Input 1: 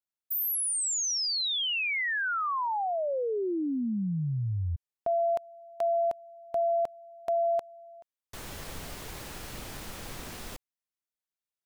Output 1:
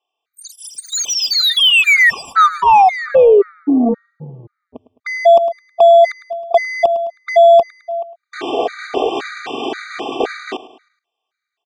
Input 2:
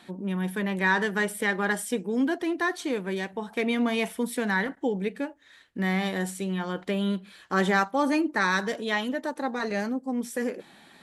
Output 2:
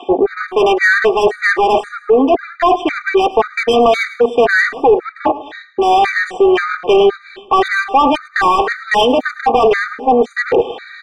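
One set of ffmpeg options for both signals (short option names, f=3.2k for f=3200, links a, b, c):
-filter_complex "[0:a]afwtdn=0.0141,highshelf=f=3.2k:g=-5,aecho=1:1:2.6:0.89,areverse,acompressor=threshold=-38dB:ratio=6:attack=6.4:release=240:knee=1:detection=rms,areverse,highpass=f=270:w=0.5412,highpass=f=270:w=1.3066,equalizer=f=320:t=q:w=4:g=-9,equalizer=f=640:t=q:w=4:g=5,equalizer=f=1.6k:t=q:w=4:g=-3,equalizer=f=3.1k:t=q:w=4:g=6,equalizer=f=5.3k:t=q:w=4:g=-6,lowpass=f=6.5k:w=0.5412,lowpass=f=6.5k:w=1.3066,asplit=2[a][b];[b]highpass=f=720:p=1,volume=23dB,asoftclip=type=tanh:threshold=-25.5dB[c];[a][c]amix=inputs=2:normalize=0,lowpass=f=1.7k:p=1,volume=-6dB,aecho=1:1:106|212|318|424:0.141|0.0664|0.0312|0.0147,alimiter=level_in=28.5dB:limit=-1dB:release=50:level=0:latency=1,afftfilt=real='re*gt(sin(2*PI*1.9*pts/sr)*(1-2*mod(floor(b*sr/1024/1200),2)),0)':imag='im*gt(sin(2*PI*1.9*pts/sr)*(1-2*mod(floor(b*sr/1024/1200),2)),0)':win_size=1024:overlap=0.75,volume=-2.5dB"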